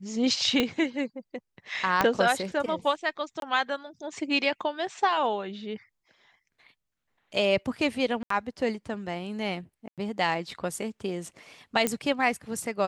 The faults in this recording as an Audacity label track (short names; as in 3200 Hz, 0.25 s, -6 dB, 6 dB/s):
0.600000	0.600000	pop -10 dBFS
2.010000	2.010000	pop -8 dBFS
3.400000	3.420000	gap 22 ms
8.230000	8.300000	gap 74 ms
9.880000	9.980000	gap 97 ms
11.870000	11.870000	pop -10 dBFS